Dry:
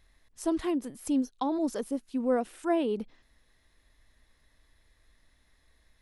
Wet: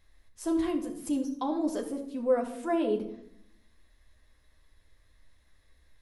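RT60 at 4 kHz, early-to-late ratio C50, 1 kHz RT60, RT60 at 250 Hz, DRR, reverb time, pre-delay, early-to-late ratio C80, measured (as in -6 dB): 0.40 s, 9.5 dB, 0.60 s, 1.0 s, 1.5 dB, 0.75 s, 10 ms, 12.0 dB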